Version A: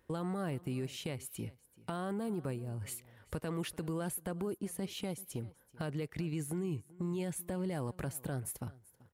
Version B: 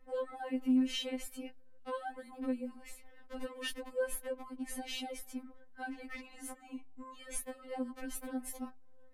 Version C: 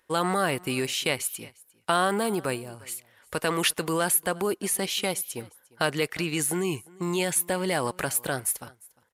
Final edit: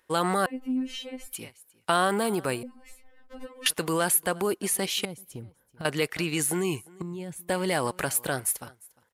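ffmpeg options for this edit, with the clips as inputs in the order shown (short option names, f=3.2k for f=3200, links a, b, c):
-filter_complex "[1:a]asplit=2[a][b];[0:a]asplit=2[c][d];[2:a]asplit=5[e][f][g][h][i];[e]atrim=end=0.462[j];[a]atrim=start=0.458:end=1.332[k];[f]atrim=start=1.328:end=2.632[l];[b]atrim=start=2.628:end=3.662[m];[g]atrim=start=3.658:end=5.052[n];[c]atrim=start=5.048:end=5.852[o];[h]atrim=start=5.848:end=7.022[p];[d]atrim=start=7.018:end=7.492[q];[i]atrim=start=7.488[r];[j][k]acrossfade=d=0.004:c1=hsin:c2=hsin[s];[s][l]acrossfade=d=0.004:c1=hsin:c2=hsin[t];[t][m]acrossfade=d=0.004:c1=hsin:c2=hsin[u];[u][n]acrossfade=d=0.004:c1=hsin:c2=hsin[v];[v][o]acrossfade=d=0.004:c1=hsin:c2=hsin[w];[w][p]acrossfade=d=0.004:c1=hsin:c2=hsin[x];[x][q]acrossfade=d=0.004:c1=hsin:c2=hsin[y];[y][r]acrossfade=d=0.004:c1=hsin:c2=hsin"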